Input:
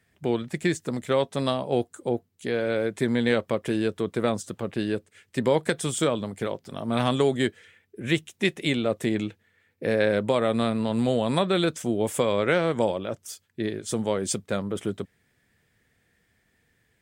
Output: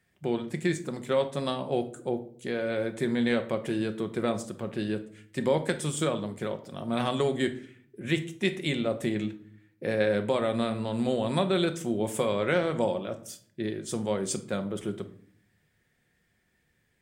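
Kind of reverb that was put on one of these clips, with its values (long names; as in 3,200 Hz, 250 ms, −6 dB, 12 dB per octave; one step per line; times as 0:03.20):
rectangular room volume 680 cubic metres, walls furnished, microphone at 0.97 metres
level −4.5 dB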